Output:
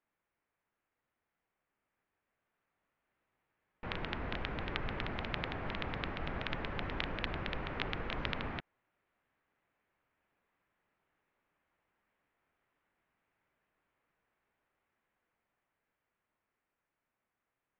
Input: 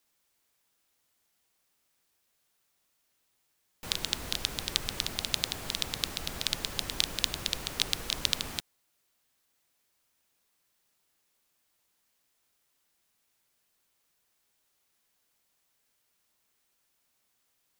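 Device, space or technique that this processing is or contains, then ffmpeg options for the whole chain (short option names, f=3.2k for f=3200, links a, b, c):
action camera in a waterproof case: -af "lowpass=f=2.2k:w=0.5412,lowpass=f=2.2k:w=1.3066,dynaudnorm=f=270:g=21:m=6dB,volume=-3.5dB" -ar 16000 -c:a aac -b:a 64k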